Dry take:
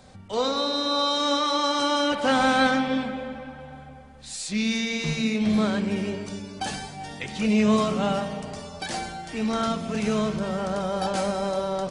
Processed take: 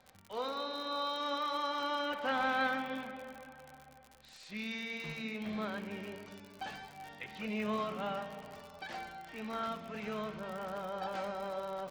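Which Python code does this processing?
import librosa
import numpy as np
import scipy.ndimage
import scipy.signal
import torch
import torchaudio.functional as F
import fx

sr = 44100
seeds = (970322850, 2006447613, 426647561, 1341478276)

y = scipy.signal.sosfilt(scipy.signal.butter(2, 2600.0, 'lowpass', fs=sr, output='sos'), x)
y = fx.low_shelf(y, sr, hz=490.0, db=-12.0)
y = fx.dmg_crackle(y, sr, seeds[0], per_s=74.0, level_db=-33.0)
y = y * librosa.db_to_amplitude(-7.5)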